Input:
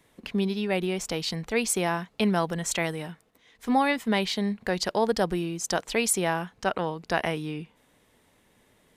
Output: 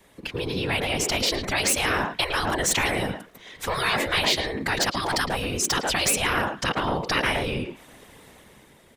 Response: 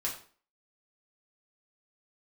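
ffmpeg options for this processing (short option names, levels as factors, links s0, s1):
-filter_complex "[0:a]afftfilt=real='hypot(re,im)*cos(2*PI*random(0))':imag='hypot(re,im)*sin(2*PI*random(1))':win_size=512:overlap=0.75,acrossover=split=300|3300[s0][s1][s2];[s2]asoftclip=type=hard:threshold=0.0188[s3];[s0][s1][s3]amix=inputs=3:normalize=0,asplit=2[s4][s5];[s5]adelay=110,highpass=300,lowpass=3400,asoftclip=type=hard:threshold=0.0501,volume=0.355[s6];[s4][s6]amix=inputs=2:normalize=0,dynaudnorm=f=110:g=13:m=2.51,afftfilt=real='re*lt(hypot(re,im),0.158)':imag='im*lt(hypot(re,im),0.158)':win_size=1024:overlap=0.75,asplit=2[s7][s8];[s8]acompressor=threshold=0.00794:ratio=6,volume=1.26[s9];[s7][s9]amix=inputs=2:normalize=0,volume=1.88"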